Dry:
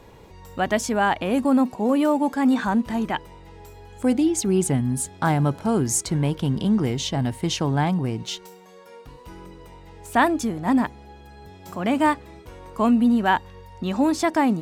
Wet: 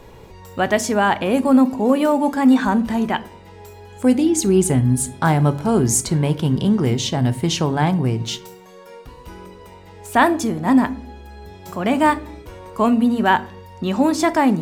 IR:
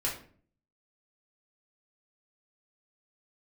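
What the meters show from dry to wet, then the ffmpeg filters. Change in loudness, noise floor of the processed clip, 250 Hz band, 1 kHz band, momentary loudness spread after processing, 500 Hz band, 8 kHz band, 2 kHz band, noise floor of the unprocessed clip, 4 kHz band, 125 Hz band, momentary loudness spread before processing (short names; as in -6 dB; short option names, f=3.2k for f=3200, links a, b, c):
+4.0 dB, -42 dBFS, +4.0 dB, +4.0 dB, 10 LU, +5.0 dB, +4.5 dB, +4.0 dB, -47 dBFS, +4.0 dB, +5.0 dB, 9 LU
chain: -filter_complex "[0:a]asplit=2[a][b];[1:a]atrim=start_sample=2205,lowshelf=f=390:g=8,highshelf=f=9.7k:g=11[c];[b][c]afir=irnorm=-1:irlink=0,volume=-17dB[d];[a][d]amix=inputs=2:normalize=0,volume=3dB"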